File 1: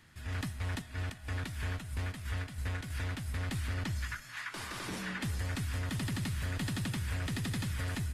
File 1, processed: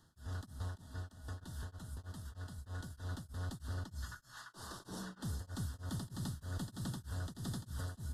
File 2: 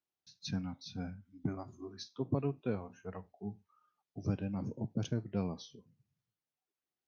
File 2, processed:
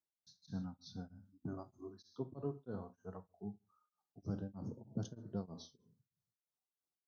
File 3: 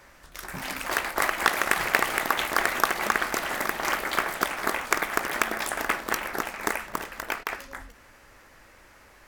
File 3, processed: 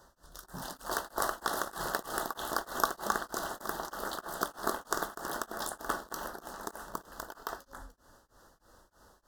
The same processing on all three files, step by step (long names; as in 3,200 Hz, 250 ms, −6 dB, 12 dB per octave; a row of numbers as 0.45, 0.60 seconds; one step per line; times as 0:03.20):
Butterworth band-reject 2,300 Hz, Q 1.1
reverb whose tail is shaped and stops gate 170 ms falling, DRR 10 dB
tremolo along a rectified sine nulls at 3.2 Hz
level −4 dB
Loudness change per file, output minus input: −8.0, −7.0, −9.5 LU